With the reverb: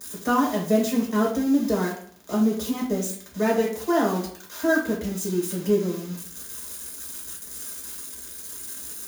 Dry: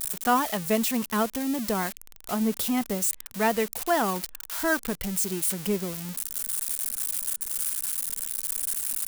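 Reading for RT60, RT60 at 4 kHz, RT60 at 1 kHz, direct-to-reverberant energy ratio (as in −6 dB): 0.55 s, 0.60 s, 0.55 s, −4.0 dB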